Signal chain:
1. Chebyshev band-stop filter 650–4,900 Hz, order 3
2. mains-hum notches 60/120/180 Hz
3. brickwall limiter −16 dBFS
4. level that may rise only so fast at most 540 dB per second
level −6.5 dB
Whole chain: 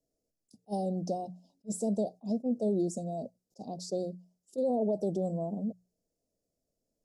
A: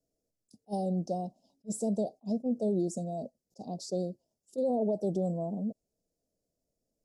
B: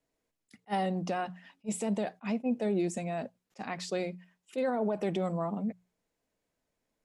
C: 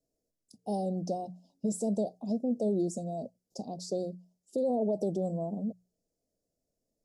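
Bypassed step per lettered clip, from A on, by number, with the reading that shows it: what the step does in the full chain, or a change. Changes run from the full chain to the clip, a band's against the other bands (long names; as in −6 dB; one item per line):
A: 2, 125 Hz band +1.5 dB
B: 1, 4 kHz band +6.5 dB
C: 4, change in momentary loudness spread −2 LU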